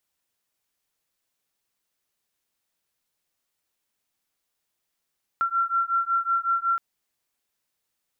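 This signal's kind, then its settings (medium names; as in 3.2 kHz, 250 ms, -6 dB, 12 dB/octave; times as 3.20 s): beating tones 1.36 kHz, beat 5.4 Hz, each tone -24.5 dBFS 1.37 s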